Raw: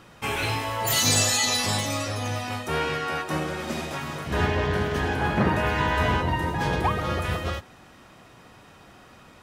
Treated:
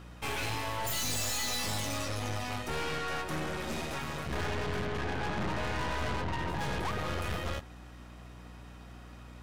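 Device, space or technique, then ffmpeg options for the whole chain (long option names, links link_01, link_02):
valve amplifier with mains hum: -filter_complex "[0:a]asettb=1/sr,asplit=3[link_01][link_02][link_03];[link_01]atrim=end=4.854[link_04];[link_02]atrim=start=4.85:end=6.49,asetpts=PTS-STARTPTS,afade=type=in:duration=0.004:curve=qsin,afade=type=out:start_time=1.636:duration=0.004:curve=qsin,aemphasis=mode=reproduction:type=50kf[link_05];[link_03]atrim=start=6.486[link_06];[link_04][link_05]acrossfade=duration=0.004:curve1=hsin:curve2=qsin[link_07];[link_07][link_06]acrossfade=duration=0.004:curve1=qsin:curve2=hsin,aeval=exprs='(tanh(39.8*val(0)+0.75)-tanh(0.75))/39.8':channel_layout=same,aeval=exprs='val(0)+0.00398*(sin(2*PI*60*n/s)+sin(2*PI*2*60*n/s)/2+sin(2*PI*3*60*n/s)/3+sin(2*PI*4*60*n/s)/4+sin(2*PI*5*60*n/s)/5)':channel_layout=same"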